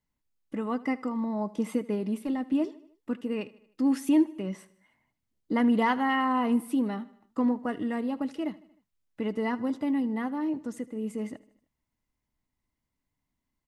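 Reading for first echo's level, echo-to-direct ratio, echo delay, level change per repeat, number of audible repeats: -20.0 dB, -18.5 dB, 77 ms, -5.5 dB, 3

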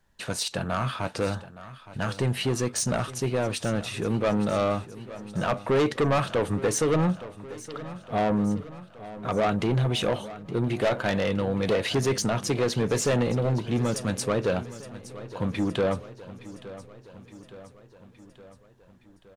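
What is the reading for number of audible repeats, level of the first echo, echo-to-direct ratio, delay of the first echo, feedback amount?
5, -16.0 dB, -14.0 dB, 0.867 s, 59%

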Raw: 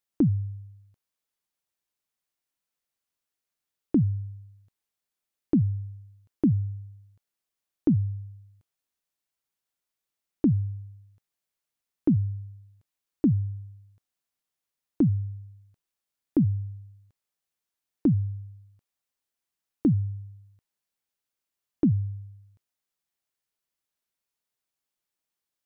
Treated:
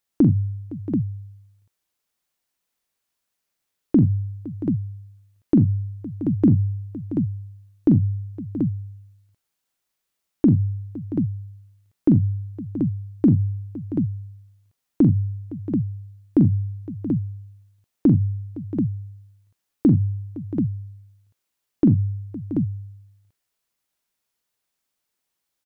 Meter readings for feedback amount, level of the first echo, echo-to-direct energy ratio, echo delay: no steady repeat, -7.0 dB, -3.0 dB, 43 ms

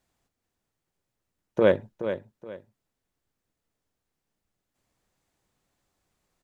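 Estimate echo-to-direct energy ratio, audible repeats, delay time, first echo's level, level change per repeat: -9.5 dB, 2, 0.423 s, -10.0 dB, -11.0 dB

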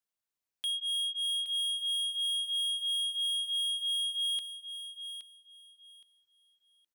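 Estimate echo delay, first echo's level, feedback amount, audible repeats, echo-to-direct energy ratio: 0.819 s, -10.0 dB, 21%, 2, -10.0 dB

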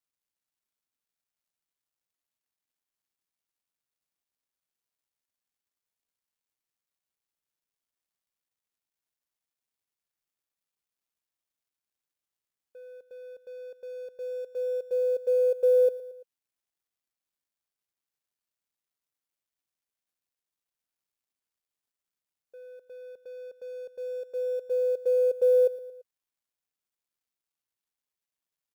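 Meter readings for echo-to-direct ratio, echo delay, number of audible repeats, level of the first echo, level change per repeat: -15.5 dB, 0.113 s, 3, -17.0 dB, -5.0 dB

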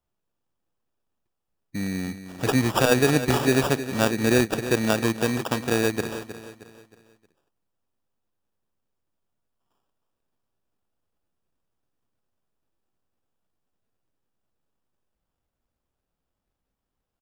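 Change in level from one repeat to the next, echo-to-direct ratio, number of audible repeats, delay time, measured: -8.0 dB, -11.5 dB, 3, 0.313 s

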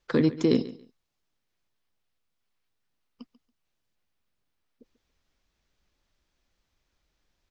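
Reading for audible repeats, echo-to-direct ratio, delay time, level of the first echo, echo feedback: 2, -17.0 dB, 0.14 s, -17.0 dB, 20%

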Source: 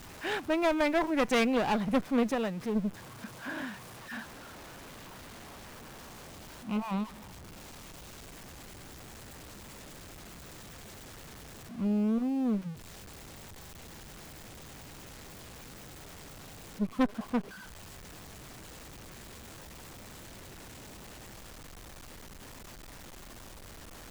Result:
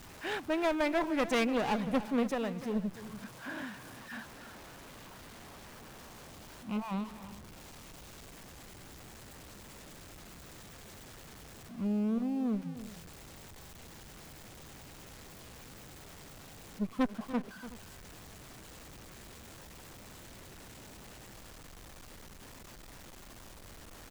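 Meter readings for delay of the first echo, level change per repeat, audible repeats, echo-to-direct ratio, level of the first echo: 0.295 s, no steady repeat, 2, -13.0 dB, -14.5 dB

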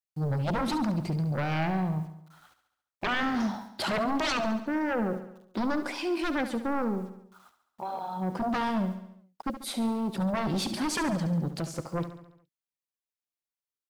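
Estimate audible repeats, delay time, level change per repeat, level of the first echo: 5, 70 ms, -5.0 dB, -11.5 dB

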